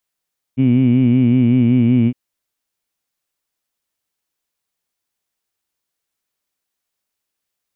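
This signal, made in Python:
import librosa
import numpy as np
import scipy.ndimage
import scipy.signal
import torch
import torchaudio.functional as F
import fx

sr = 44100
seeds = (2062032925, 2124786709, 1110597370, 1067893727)

y = fx.formant_vowel(sr, seeds[0], length_s=1.56, hz=127.0, glide_st=-1.0, vibrato_hz=5.3, vibrato_st=0.9, f1_hz=250.0, f2_hz=2300.0, f3_hz=2900.0)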